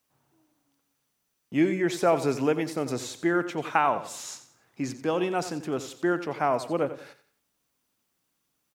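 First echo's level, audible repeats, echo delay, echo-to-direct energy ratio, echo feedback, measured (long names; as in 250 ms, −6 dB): −13.0 dB, 3, 89 ms, −12.5 dB, 35%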